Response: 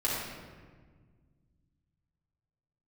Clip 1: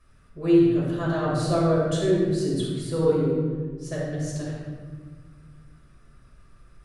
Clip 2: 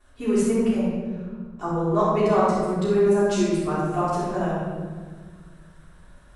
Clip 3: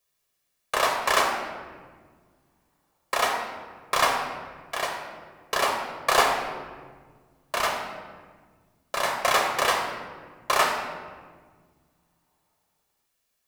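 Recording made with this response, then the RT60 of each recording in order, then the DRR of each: 1; 1.6 s, 1.6 s, 1.6 s; -7.5 dB, -17.0 dB, 1.5 dB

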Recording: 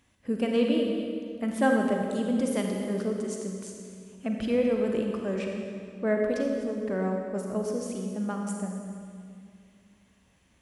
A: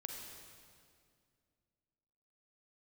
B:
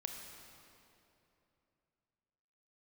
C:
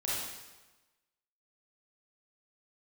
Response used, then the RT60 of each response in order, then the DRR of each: A; 2.2 s, 2.9 s, 1.2 s; 1.5 dB, 2.5 dB, -8.0 dB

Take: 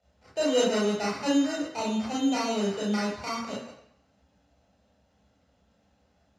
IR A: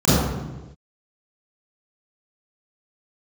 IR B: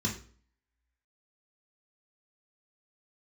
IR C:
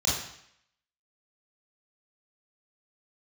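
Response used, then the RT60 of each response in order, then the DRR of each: C; no single decay rate, 0.45 s, 0.70 s; -13.5 dB, -2.0 dB, -6.0 dB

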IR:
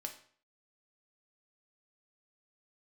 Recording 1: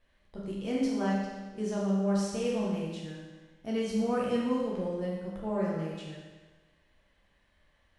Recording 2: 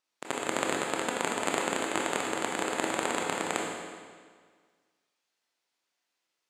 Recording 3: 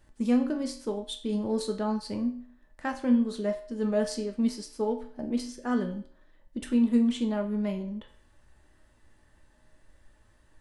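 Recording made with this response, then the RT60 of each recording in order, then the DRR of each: 3; 1.3 s, 1.7 s, 0.50 s; -5.5 dB, -1.5 dB, 3.0 dB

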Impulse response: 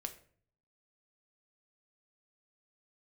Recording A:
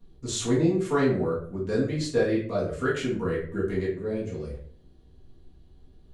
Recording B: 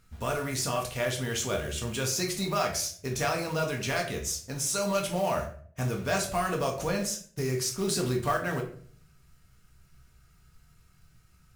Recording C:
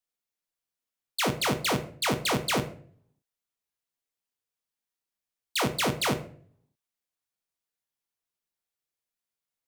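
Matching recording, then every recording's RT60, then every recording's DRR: C; 0.50 s, 0.50 s, 0.50 s; -7.5 dB, 0.5 dB, 6.5 dB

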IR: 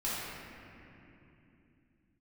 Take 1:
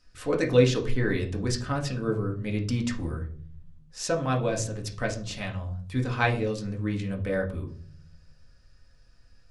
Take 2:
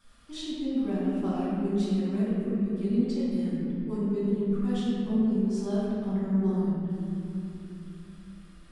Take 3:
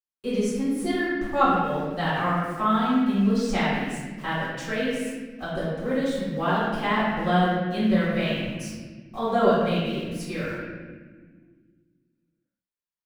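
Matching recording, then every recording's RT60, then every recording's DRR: 2; 0.50 s, 2.9 s, 1.5 s; 0.0 dB, -10.0 dB, -11.0 dB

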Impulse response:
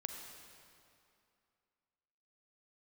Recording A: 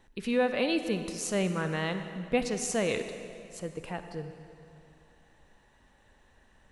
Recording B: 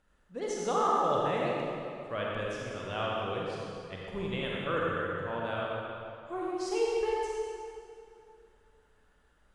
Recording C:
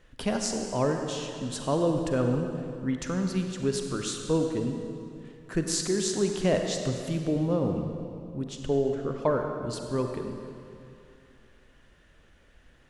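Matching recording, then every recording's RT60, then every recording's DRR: C; 2.6 s, 2.6 s, 2.6 s; 8.0 dB, -4.5 dB, 3.5 dB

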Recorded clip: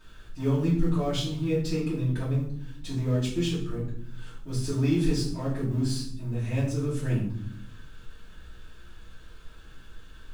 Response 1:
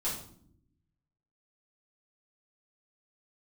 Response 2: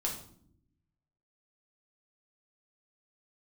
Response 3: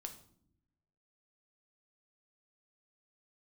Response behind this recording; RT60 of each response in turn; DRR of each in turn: 1; no single decay rate, no single decay rate, no single decay rate; -9.5 dB, -2.5 dB, 4.5 dB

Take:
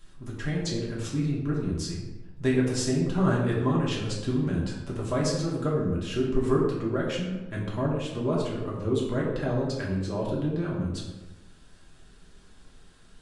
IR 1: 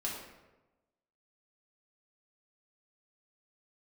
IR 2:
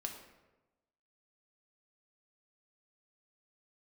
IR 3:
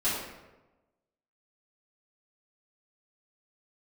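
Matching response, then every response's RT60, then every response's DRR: 1; 1.1 s, 1.1 s, 1.1 s; -5.0 dB, 2.0 dB, -13.5 dB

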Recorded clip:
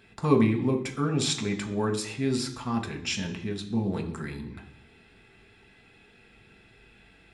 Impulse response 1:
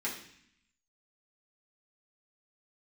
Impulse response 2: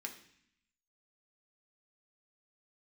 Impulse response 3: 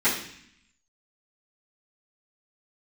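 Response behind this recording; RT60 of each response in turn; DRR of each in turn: 2; 0.60 s, 0.65 s, 0.60 s; -6.5 dB, 2.0 dB, -15.5 dB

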